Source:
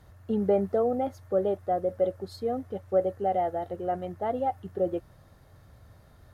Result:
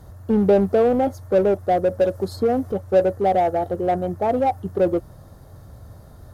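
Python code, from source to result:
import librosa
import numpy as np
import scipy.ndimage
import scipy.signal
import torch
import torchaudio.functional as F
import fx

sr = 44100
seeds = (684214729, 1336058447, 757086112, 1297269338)

p1 = fx.peak_eq(x, sr, hz=2400.0, db=-11.5, octaves=1.5)
p2 = np.clip(p1, -10.0 ** (-31.0 / 20.0), 10.0 ** (-31.0 / 20.0))
p3 = p1 + (p2 * 10.0 ** (-3.0 / 20.0))
p4 = fx.band_squash(p3, sr, depth_pct=70, at=(2.01, 2.72))
y = p4 * 10.0 ** (7.0 / 20.0)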